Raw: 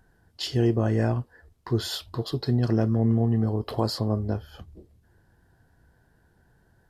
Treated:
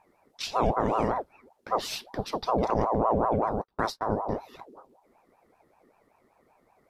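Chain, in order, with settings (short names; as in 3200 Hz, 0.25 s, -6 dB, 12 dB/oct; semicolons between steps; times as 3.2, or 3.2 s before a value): 2.74–4.17 gate -26 dBFS, range -40 dB; ring modulator with a swept carrier 600 Hz, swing 50%, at 5.2 Hz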